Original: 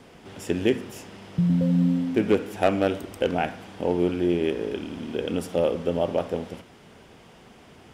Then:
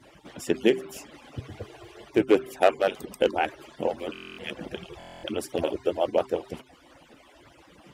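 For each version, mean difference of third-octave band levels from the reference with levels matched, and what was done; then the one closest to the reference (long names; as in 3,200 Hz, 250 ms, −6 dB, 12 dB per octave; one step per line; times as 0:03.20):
4.5 dB: harmonic-percussive split with one part muted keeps percussive
high-pass filter 47 Hz
hum removal 130.2 Hz, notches 3
buffer that repeats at 0:04.13/0:04.98, samples 1,024, times 10
level +2 dB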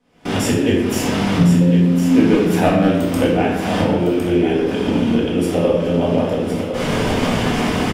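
8.5 dB: camcorder AGC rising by 72 dB per second
noise gate with hold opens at −23 dBFS
single-tap delay 1,058 ms −8 dB
rectangular room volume 260 cubic metres, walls mixed, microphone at 1.9 metres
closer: first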